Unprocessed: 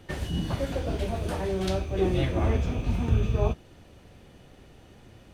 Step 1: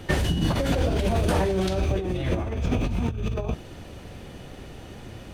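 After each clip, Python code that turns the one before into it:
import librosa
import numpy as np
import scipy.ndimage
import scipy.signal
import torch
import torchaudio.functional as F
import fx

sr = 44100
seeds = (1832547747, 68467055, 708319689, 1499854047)

y = fx.over_compress(x, sr, threshold_db=-31.0, ratio=-1.0)
y = y * 10.0 ** (6.5 / 20.0)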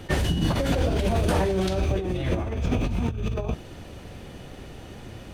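y = fx.attack_slew(x, sr, db_per_s=550.0)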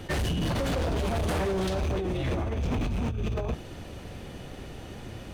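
y = np.clip(10.0 ** (25.0 / 20.0) * x, -1.0, 1.0) / 10.0 ** (25.0 / 20.0)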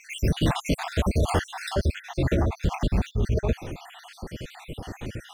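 y = fx.spec_dropout(x, sr, seeds[0], share_pct=63)
y = y * 10.0 ** (7.5 / 20.0)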